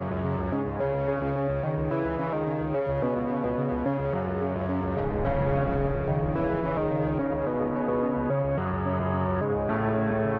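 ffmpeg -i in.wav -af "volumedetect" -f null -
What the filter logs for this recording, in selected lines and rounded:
mean_volume: -26.7 dB
max_volume: -13.2 dB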